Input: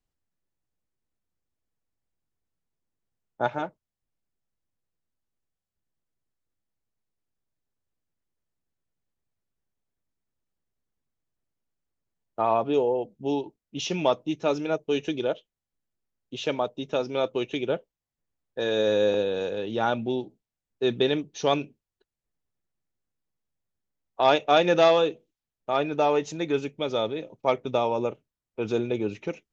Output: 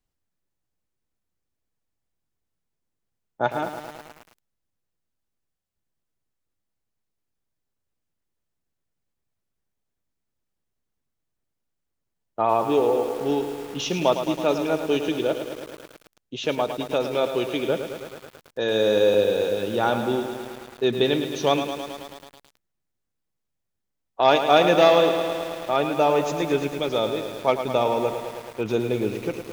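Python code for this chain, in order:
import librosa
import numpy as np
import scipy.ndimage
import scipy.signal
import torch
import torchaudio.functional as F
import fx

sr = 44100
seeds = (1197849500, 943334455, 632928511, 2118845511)

y = fx.echo_crushed(x, sr, ms=108, feedback_pct=80, bits=7, wet_db=-8.5)
y = y * 10.0 ** (2.5 / 20.0)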